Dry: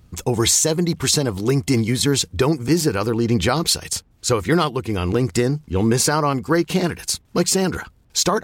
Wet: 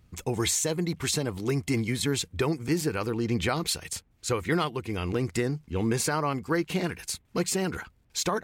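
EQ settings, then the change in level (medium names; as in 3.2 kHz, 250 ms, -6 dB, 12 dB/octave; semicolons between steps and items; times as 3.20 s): dynamic bell 5.3 kHz, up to -4 dB, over -36 dBFS, Q 2; peaking EQ 2.2 kHz +5 dB 0.77 oct; -9.0 dB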